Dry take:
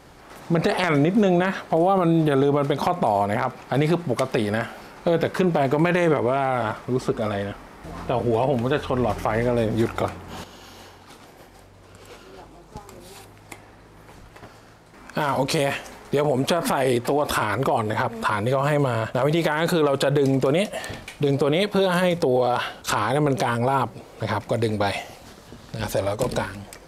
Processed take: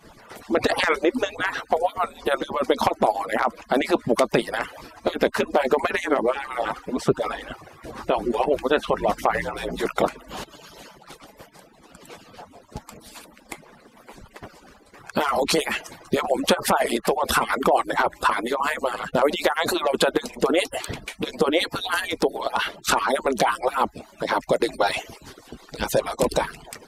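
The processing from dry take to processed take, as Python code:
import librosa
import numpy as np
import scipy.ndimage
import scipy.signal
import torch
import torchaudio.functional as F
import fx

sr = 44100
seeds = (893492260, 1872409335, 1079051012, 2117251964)

y = fx.hpss_only(x, sr, part='percussive')
y = y * librosa.db_to_amplitude(4.0)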